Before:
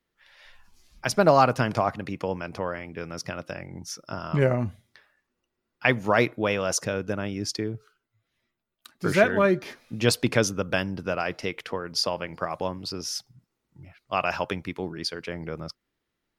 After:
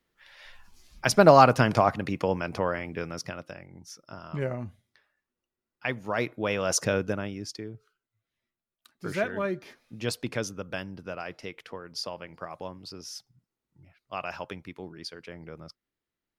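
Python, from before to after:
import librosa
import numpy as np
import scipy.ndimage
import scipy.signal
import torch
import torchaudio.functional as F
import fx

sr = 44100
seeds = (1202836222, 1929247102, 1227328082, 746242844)

y = fx.gain(x, sr, db=fx.line((2.95, 2.5), (3.66, -9.0), (6.07, -9.0), (6.94, 3.0), (7.53, -9.0)))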